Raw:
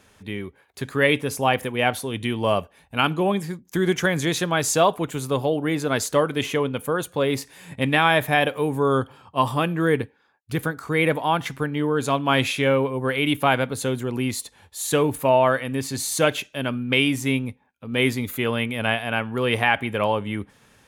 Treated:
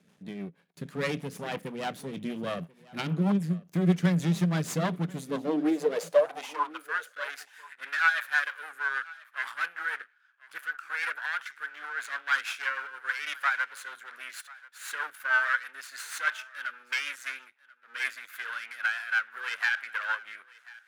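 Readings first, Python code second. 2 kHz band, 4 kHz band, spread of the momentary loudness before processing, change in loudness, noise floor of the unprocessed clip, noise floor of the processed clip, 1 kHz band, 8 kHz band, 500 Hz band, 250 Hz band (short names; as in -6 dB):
-3.0 dB, -12.5 dB, 9 LU, -7.5 dB, -60 dBFS, -63 dBFS, -11.0 dB, -13.5 dB, -12.0 dB, -7.5 dB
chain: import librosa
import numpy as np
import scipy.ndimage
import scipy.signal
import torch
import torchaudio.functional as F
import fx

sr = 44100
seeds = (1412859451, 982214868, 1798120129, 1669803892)

p1 = np.maximum(x, 0.0)
p2 = fx.filter_sweep_highpass(p1, sr, from_hz=170.0, to_hz=1500.0, start_s=5.11, end_s=6.93, q=6.6)
p3 = fx.high_shelf(p2, sr, hz=6300.0, db=-4.0)
p4 = fx.rotary(p3, sr, hz=6.3)
p5 = p4 + fx.echo_single(p4, sr, ms=1038, db=-22.0, dry=0)
y = p5 * librosa.db_to_amplitude(-4.5)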